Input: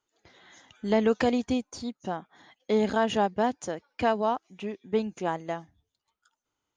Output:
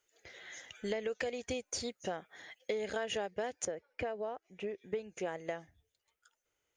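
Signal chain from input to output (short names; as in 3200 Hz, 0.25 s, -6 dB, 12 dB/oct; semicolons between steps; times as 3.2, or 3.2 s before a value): ten-band EQ 125 Hz -3 dB, 250 Hz -10 dB, 500 Hz +8 dB, 1000 Hz -10 dB, 2000 Hz +6 dB, 4000 Hz -6 dB; compressor 12:1, threshold -34 dBFS, peak gain reduction 16.5 dB; high shelf 2000 Hz +8.5 dB, from 3.65 s -6 dB, from 4.78 s +3.5 dB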